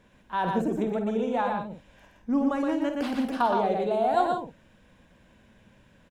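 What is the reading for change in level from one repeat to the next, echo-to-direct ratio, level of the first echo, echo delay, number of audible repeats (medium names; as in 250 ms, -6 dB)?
no regular repeats, -2.0 dB, -12.5 dB, 50 ms, 3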